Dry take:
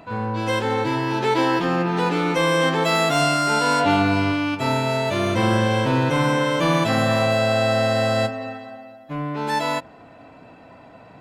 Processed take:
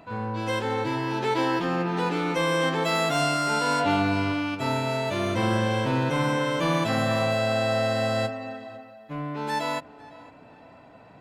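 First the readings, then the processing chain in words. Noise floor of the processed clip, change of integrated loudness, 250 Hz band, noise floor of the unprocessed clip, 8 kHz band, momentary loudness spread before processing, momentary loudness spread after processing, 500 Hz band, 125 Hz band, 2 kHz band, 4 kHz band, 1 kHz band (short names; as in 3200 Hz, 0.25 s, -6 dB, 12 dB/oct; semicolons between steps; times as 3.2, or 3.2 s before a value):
-50 dBFS, -5.0 dB, -5.0 dB, -46 dBFS, -5.0 dB, 8 LU, 9 LU, -5.0 dB, -5.0 dB, -5.0 dB, -5.0 dB, -5.0 dB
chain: tape echo 0.504 s, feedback 40%, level -19.5 dB, low-pass 3100 Hz; gain -5 dB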